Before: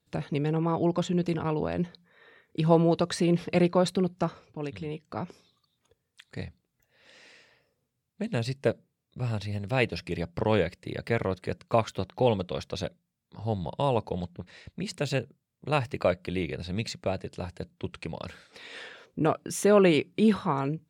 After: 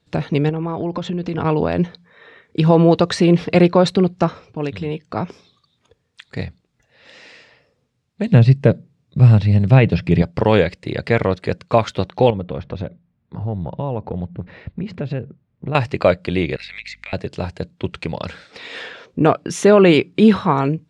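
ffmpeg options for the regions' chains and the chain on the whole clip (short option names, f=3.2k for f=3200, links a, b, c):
-filter_complex "[0:a]asettb=1/sr,asplit=3[a][b][c];[a]atrim=end=0.494[d];[b]atrim=start=0.49:end=1.38,asetpts=PTS-STARTPTS,afade=t=in:d=0.004:c=qsin,afade=t=out:st=0.886:d=0.004:c=qsin,lowpass=7.6k,highshelf=f=6k:g=-6.5,acompressor=threshold=-30dB:ratio=10:attack=3.2:release=140:knee=1:detection=peak[e];[c]atrim=start=1.376[f];[d][e]acrossfade=d=0.004:c1=hsin:c2=qsin[g];[g][f]acrossfade=d=0.004:c1=qsin:c2=hsin,asettb=1/sr,asplit=3[h][i][j];[h]atrim=end=8.324[k];[i]atrim=start=8.32:end=10.22,asetpts=PTS-STARTPTS,afade=t=in:d=0.004:c=qsin,afade=t=out:st=1.896:d=0.004:c=qsin,acrossover=split=3400[l][m];[m]acompressor=threshold=-52dB:ratio=4:attack=1:release=60[n];[l][n]amix=inputs=2:normalize=0,equalizer=f=140:w=0.86:g=11.5[o];[j]atrim=start=10.216[p];[k][o]acrossfade=d=0.004:c1=hsin:c2=qsin[q];[q][p]acrossfade=d=0.004:c1=qsin:c2=hsin,asettb=1/sr,asplit=3[r][s][t];[r]atrim=end=12.304[u];[s]atrim=start=12.3:end=15.75,asetpts=PTS-STARTPTS,afade=t=in:d=0.004:c=qsin,afade=t=out:st=3.446:d=0.004:c=qsin,lowpass=2.1k,lowshelf=f=350:g=8.5,acompressor=threshold=-35dB:ratio=3:attack=3.2:release=140:knee=1:detection=peak[v];[t]atrim=start=15.746[w];[u][v]acrossfade=d=0.004:c1=hsin:c2=qsin[x];[x][w]acrossfade=d=0.004:c1=qsin:c2=hsin,asettb=1/sr,asplit=3[y][z][aa];[y]atrim=end=16.564[ab];[z]atrim=start=16.56:end=17.13,asetpts=PTS-STARTPTS,afade=t=in:d=0.004:c=qsin,afade=t=out:st=0.566:d=0.004:c=qsin,highpass=f=2.1k:t=q:w=7.4,acompressor=threshold=-41dB:ratio=5:attack=3.2:release=140:knee=1:detection=peak,aeval=exprs='val(0)+0.000631*(sin(2*PI*50*n/s)+sin(2*PI*2*50*n/s)/2+sin(2*PI*3*50*n/s)/3+sin(2*PI*4*50*n/s)/4+sin(2*PI*5*50*n/s)/5)':c=same[ac];[aa]atrim=start=17.126[ad];[ab][ac]acrossfade=d=0.004:c1=hsin:c2=qsin[ae];[ae][ad]acrossfade=d=0.004:c1=qsin:c2=hsin,lowpass=5.8k,alimiter=level_in=12dB:limit=-1dB:release=50:level=0:latency=1,volume=-1dB"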